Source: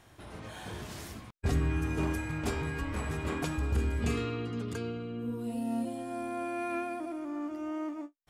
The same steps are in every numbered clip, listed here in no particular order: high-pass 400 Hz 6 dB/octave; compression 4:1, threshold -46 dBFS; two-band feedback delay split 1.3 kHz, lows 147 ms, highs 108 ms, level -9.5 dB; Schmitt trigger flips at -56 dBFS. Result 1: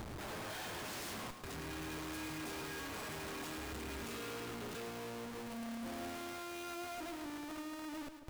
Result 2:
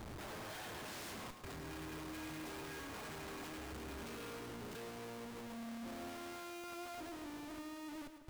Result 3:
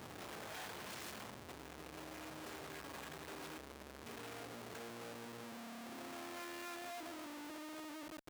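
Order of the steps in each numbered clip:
high-pass > Schmitt trigger > compression > two-band feedback delay; high-pass > compression > Schmitt trigger > two-band feedback delay; compression > two-band feedback delay > Schmitt trigger > high-pass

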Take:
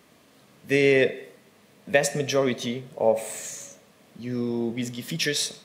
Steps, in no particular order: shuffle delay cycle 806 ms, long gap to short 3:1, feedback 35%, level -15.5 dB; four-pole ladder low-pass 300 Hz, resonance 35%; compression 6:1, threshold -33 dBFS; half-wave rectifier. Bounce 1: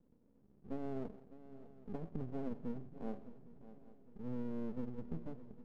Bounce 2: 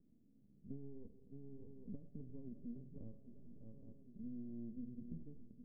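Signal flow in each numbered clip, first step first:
four-pole ladder low-pass > compression > half-wave rectifier > shuffle delay; shuffle delay > compression > half-wave rectifier > four-pole ladder low-pass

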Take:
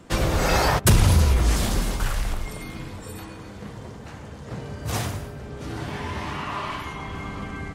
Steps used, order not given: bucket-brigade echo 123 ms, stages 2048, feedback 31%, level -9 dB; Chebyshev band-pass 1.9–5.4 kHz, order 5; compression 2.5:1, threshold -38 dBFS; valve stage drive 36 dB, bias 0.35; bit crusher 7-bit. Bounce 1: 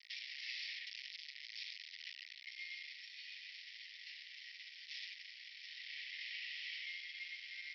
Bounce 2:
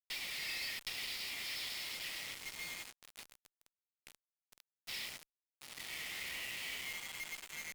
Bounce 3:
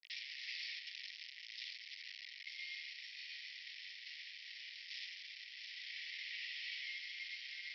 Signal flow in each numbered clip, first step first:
bit crusher > bucket-brigade echo > valve stage > Chebyshev band-pass > compression; Chebyshev band-pass > compression > bucket-brigade echo > bit crusher > valve stage; valve stage > compression > bucket-brigade echo > bit crusher > Chebyshev band-pass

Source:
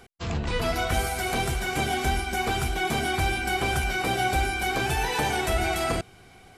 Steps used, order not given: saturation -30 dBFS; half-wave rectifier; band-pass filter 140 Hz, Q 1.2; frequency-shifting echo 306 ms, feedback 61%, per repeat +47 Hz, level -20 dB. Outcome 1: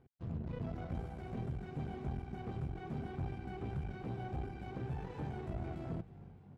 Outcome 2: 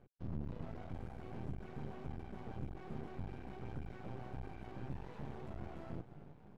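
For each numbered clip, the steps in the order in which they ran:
half-wave rectifier > frequency-shifting echo > band-pass filter > saturation; frequency-shifting echo > saturation > band-pass filter > half-wave rectifier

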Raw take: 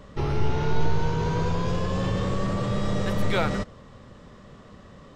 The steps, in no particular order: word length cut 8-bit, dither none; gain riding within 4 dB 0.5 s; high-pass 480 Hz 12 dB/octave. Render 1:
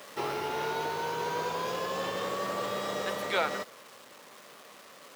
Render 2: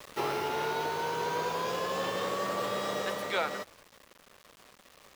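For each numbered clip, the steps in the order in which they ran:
word length cut > gain riding > high-pass; high-pass > word length cut > gain riding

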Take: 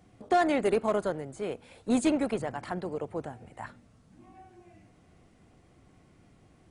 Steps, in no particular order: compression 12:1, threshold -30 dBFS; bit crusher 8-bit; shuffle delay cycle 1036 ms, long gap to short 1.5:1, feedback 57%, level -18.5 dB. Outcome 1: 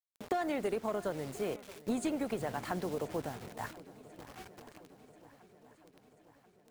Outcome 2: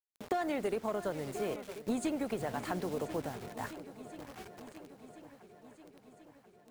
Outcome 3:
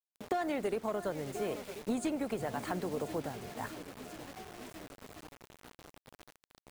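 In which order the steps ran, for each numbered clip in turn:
bit crusher > compression > shuffle delay; bit crusher > shuffle delay > compression; shuffle delay > bit crusher > compression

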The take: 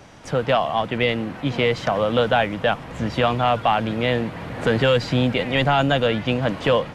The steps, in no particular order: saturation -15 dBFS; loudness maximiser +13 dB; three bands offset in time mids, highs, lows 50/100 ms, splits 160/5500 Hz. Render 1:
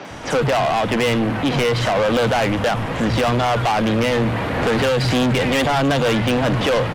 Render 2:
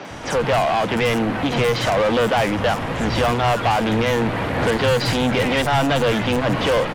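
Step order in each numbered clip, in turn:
three bands offset in time > loudness maximiser > saturation; loudness maximiser > saturation > three bands offset in time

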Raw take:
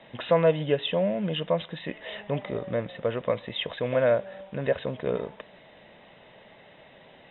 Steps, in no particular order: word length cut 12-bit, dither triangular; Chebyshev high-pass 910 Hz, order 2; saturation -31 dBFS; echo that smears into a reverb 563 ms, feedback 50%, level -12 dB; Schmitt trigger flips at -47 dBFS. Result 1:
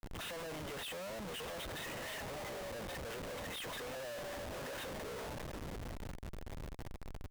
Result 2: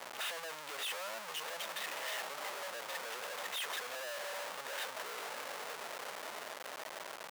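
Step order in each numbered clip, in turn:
saturation > echo that smears into a reverb > word length cut > Chebyshev high-pass > Schmitt trigger; word length cut > saturation > echo that smears into a reverb > Schmitt trigger > Chebyshev high-pass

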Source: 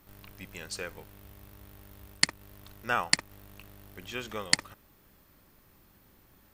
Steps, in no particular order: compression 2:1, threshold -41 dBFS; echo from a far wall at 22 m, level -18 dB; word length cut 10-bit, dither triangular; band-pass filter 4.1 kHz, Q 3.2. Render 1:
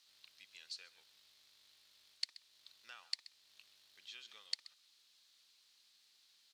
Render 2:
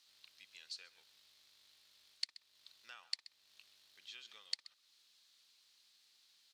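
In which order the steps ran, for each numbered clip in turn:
echo from a far wall > compression > word length cut > band-pass filter; echo from a far wall > word length cut > compression > band-pass filter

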